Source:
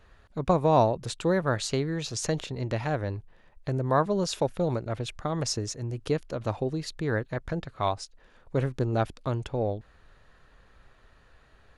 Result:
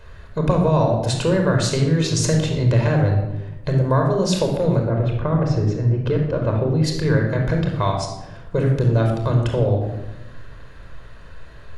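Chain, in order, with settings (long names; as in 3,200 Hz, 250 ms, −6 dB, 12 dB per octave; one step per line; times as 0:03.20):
0:04.83–0:06.83: low-pass filter 1,400 Hz → 2,900 Hz 12 dB per octave
downward compressor 3 to 1, threshold −32 dBFS, peak gain reduction 12 dB
convolution reverb RT60 1.0 s, pre-delay 26 ms, DRR 2 dB
level +9 dB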